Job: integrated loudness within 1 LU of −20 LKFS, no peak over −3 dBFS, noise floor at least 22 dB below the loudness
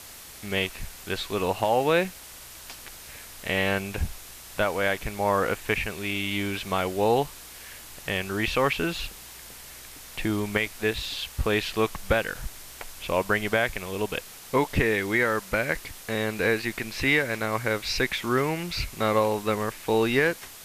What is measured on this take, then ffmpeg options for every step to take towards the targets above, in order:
background noise floor −44 dBFS; target noise floor −49 dBFS; integrated loudness −26.5 LKFS; sample peak −10.5 dBFS; target loudness −20.0 LKFS
→ -af "afftdn=noise_reduction=6:noise_floor=-44"
-af "volume=6.5dB"

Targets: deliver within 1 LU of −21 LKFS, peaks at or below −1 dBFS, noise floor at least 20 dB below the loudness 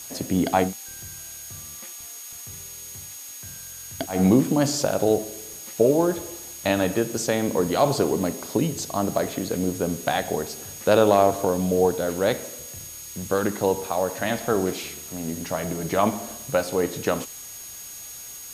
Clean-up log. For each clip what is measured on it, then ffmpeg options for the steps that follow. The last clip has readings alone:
interfering tone 6,600 Hz; level of the tone −40 dBFS; background noise floor −39 dBFS; target noise floor −44 dBFS; integrated loudness −24.0 LKFS; sample peak −5.0 dBFS; target loudness −21.0 LKFS
→ -af "bandreject=frequency=6600:width=30"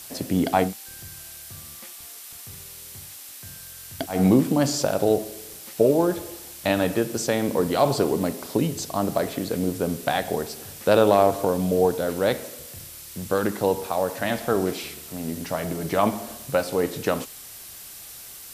interfering tone none found; background noise floor −42 dBFS; target noise floor −44 dBFS
→ -af "afftdn=noise_reduction=6:noise_floor=-42"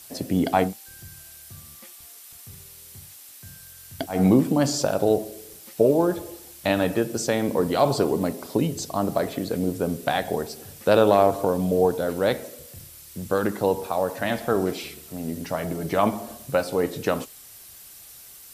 background noise floor −46 dBFS; integrated loudness −24.0 LKFS; sample peak −5.0 dBFS; target loudness −21.0 LKFS
→ -af "volume=3dB"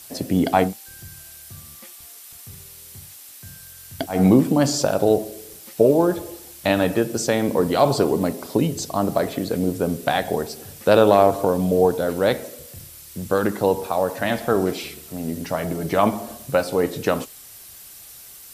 integrated loudness −21.0 LKFS; sample peak −2.0 dBFS; background noise floor −43 dBFS

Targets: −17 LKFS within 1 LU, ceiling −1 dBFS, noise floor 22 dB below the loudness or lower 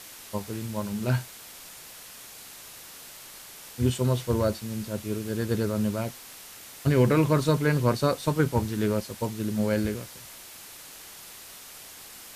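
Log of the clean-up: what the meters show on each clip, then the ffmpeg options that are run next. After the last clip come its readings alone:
background noise floor −46 dBFS; target noise floor −49 dBFS; integrated loudness −27.0 LKFS; sample peak −9.5 dBFS; target loudness −17.0 LKFS
→ -af "afftdn=noise_reduction=6:noise_floor=-46"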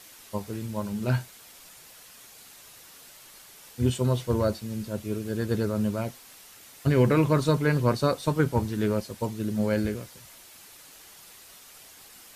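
background noise floor −50 dBFS; integrated loudness −27.0 LKFS; sample peak −10.0 dBFS; target loudness −17.0 LKFS
→ -af "volume=10dB,alimiter=limit=-1dB:level=0:latency=1"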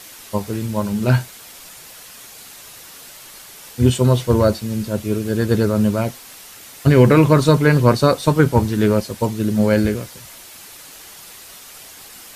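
integrated loudness −17.0 LKFS; sample peak −1.0 dBFS; background noise floor −40 dBFS

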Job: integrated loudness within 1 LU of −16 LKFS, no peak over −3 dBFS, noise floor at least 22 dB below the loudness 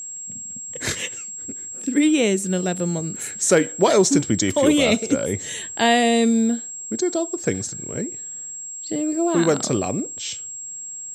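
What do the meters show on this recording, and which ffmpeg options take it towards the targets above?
interfering tone 7,600 Hz; level of the tone −31 dBFS; integrated loudness −21.5 LKFS; sample peak −5.0 dBFS; target loudness −16.0 LKFS
→ -af "bandreject=frequency=7600:width=30"
-af "volume=5.5dB,alimiter=limit=-3dB:level=0:latency=1"

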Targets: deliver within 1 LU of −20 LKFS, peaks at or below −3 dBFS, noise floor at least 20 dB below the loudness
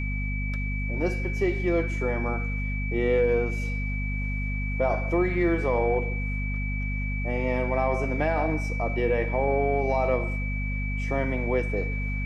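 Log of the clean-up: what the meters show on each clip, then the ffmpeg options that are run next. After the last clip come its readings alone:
mains hum 50 Hz; hum harmonics up to 250 Hz; level of the hum −27 dBFS; interfering tone 2,300 Hz; level of the tone −34 dBFS; integrated loudness −27.0 LKFS; sample peak −13.0 dBFS; target loudness −20.0 LKFS
→ -af "bandreject=frequency=50:width_type=h:width=6,bandreject=frequency=100:width_type=h:width=6,bandreject=frequency=150:width_type=h:width=6,bandreject=frequency=200:width_type=h:width=6,bandreject=frequency=250:width_type=h:width=6"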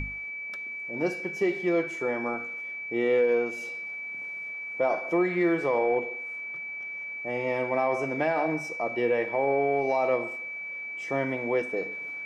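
mains hum none found; interfering tone 2,300 Hz; level of the tone −34 dBFS
→ -af "bandreject=frequency=2300:width=30"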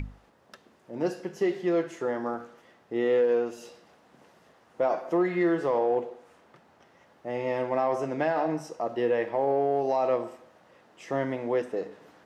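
interfering tone none found; integrated loudness −28.0 LKFS; sample peak −16.0 dBFS; target loudness −20.0 LKFS
→ -af "volume=8dB"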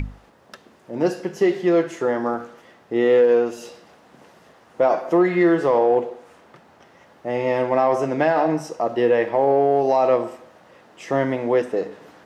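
integrated loudness −20.0 LKFS; sample peak −8.0 dBFS; background noise floor −53 dBFS

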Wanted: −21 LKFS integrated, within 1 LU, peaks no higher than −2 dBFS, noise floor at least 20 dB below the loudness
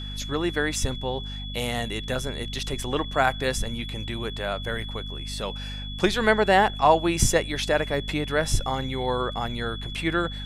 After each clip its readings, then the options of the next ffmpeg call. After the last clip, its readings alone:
mains hum 50 Hz; hum harmonics up to 250 Hz; level of the hum −33 dBFS; interfering tone 3,400 Hz; level of the tone −37 dBFS; integrated loudness −26.0 LKFS; sample peak −5.0 dBFS; target loudness −21.0 LKFS
→ -af "bandreject=frequency=50:width_type=h:width=6,bandreject=frequency=100:width_type=h:width=6,bandreject=frequency=150:width_type=h:width=6,bandreject=frequency=200:width_type=h:width=6,bandreject=frequency=250:width_type=h:width=6"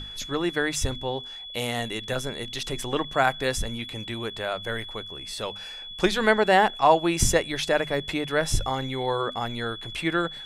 mains hum none found; interfering tone 3,400 Hz; level of the tone −37 dBFS
→ -af "bandreject=frequency=3400:width=30"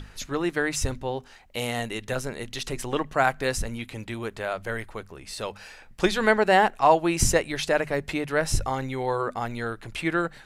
interfering tone none found; integrated loudness −26.0 LKFS; sample peak −6.0 dBFS; target loudness −21.0 LKFS
→ -af "volume=5dB,alimiter=limit=-2dB:level=0:latency=1"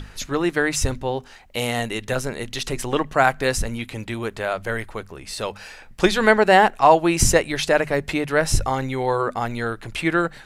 integrated loudness −21.5 LKFS; sample peak −2.0 dBFS; background noise floor −45 dBFS

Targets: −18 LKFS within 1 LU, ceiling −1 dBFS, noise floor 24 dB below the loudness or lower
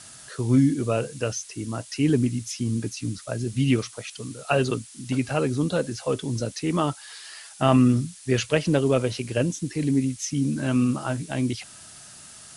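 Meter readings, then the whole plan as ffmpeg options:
background noise floor −46 dBFS; target noise floor −49 dBFS; integrated loudness −25.0 LKFS; sample peak −5.0 dBFS; target loudness −18.0 LKFS
→ -af "afftdn=noise_reduction=6:noise_floor=-46"
-af "volume=7dB,alimiter=limit=-1dB:level=0:latency=1"

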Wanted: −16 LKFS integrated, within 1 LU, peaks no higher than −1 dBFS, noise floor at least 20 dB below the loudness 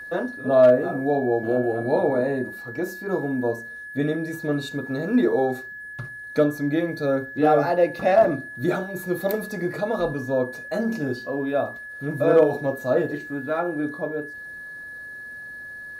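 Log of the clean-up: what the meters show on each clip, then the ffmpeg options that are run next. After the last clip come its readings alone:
interfering tone 1,700 Hz; level of the tone −35 dBFS; integrated loudness −23.5 LKFS; sample peak −7.0 dBFS; target loudness −16.0 LKFS
→ -af "bandreject=frequency=1700:width=30"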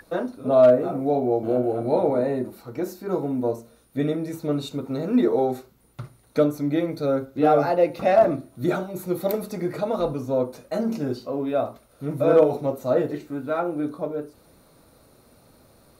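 interfering tone none found; integrated loudness −23.5 LKFS; sample peak −7.5 dBFS; target loudness −16.0 LKFS
→ -af "volume=7.5dB,alimiter=limit=-1dB:level=0:latency=1"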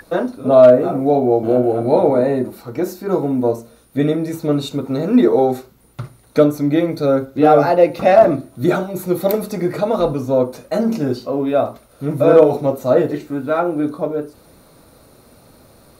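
integrated loudness −16.5 LKFS; sample peak −1.0 dBFS; background noise floor −50 dBFS

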